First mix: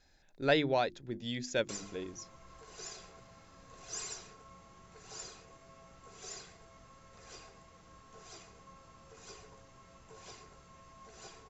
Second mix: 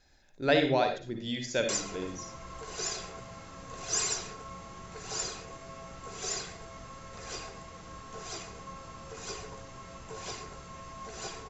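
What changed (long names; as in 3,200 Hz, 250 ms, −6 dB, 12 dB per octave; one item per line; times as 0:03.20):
speech: send on
background +11.5 dB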